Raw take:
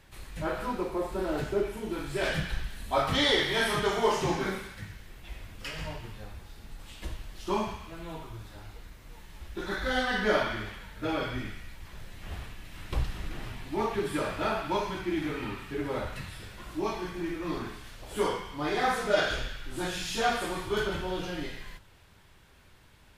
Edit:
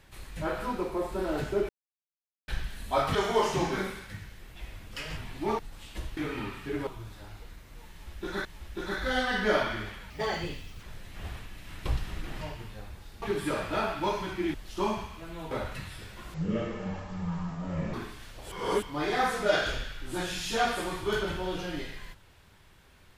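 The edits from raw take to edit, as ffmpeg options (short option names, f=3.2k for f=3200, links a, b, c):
-filter_complex "[0:a]asplit=19[a][b][c][d][e][f][g][h][i][j][k][l][m][n][o][p][q][r][s];[a]atrim=end=1.69,asetpts=PTS-STARTPTS,afade=t=out:st=1.686:d=0.004:c=hsin[t];[b]atrim=start=1.69:end=2.48,asetpts=PTS-STARTPTS,volume=0[u];[c]atrim=start=2.48:end=3.152,asetpts=PTS-STARTPTS,afade=t=in:d=0.004:c=hsin[v];[d]atrim=start=3.828:end=5.852[w];[e]atrim=start=13.478:end=13.902[x];[f]atrim=start=6.658:end=7.242[y];[g]atrim=start=15.218:end=15.922[z];[h]atrim=start=8.208:end=9.792[aa];[i]atrim=start=9.248:end=10.904[ab];[j]atrim=start=10.9:end=11.9,asetpts=PTS-STARTPTS,asetrate=60417,aresample=44100[ac];[k]atrim=start=11.896:end=13.482[ad];[l]atrim=start=5.848:end=6.662[ae];[m]atrim=start=13.898:end=15.222[af];[n]atrim=start=7.238:end=8.212[ag];[o]atrim=start=15.918:end=16.754[ah];[p]atrim=start=16.75:end=17.58,asetpts=PTS-STARTPTS,asetrate=22932,aresample=44100,atrim=end_sample=70390,asetpts=PTS-STARTPTS[ai];[q]atrim=start=17.576:end=18.162[aj];[r]atrim=start=18.158:end=18.472,asetpts=PTS-STARTPTS,areverse[ak];[s]atrim=start=18.468[al];[t][u][v]concat=n=3:v=0:a=1[am];[am][w]acrossfade=d=0.004:c1=hsin:c2=hsin[an];[an][x]acrossfade=d=0.004:c1=hsin:c2=hsin[ao];[ao][y]acrossfade=d=0.004:c1=hsin:c2=hsin[ap];[ap][z]acrossfade=d=0.004:c1=hsin:c2=hsin[aq];[aq][aa]acrossfade=d=0.004:c1=hsin:c2=hsin[ar];[ar][ab]acrossfade=d=0.004:c1=hsin:c2=hsin[as];[as][ac]acrossfade=d=0.004:c1=hsin:c2=hsin[at];[at][ad]acrossfade=d=0.004:c1=hsin:c2=hsin[au];[au][ae]acrossfade=d=0.004:c1=hsin:c2=hsin[av];[av][af]acrossfade=d=0.004:c1=hsin:c2=hsin[aw];[aw][ag]acrossfade=d=0.004:c1=hsin:c2=hsin[ax];[ax][ah]acrossfade=d=0.004:c1=hsin:c2=hsin[ay];[ay][ai]acrossfade=d=0.004:c1=hsin:c2=hsin[az];[az][aj]acrossfade=d=0.004:c1=hsin:c2=hsin[ba];[ba][ak]acrossfade=d=0.004:c1=hsin:c2=hsin[bb];[bb][al]acrossfade=d=0.004:c1=hsin:c2=hsin"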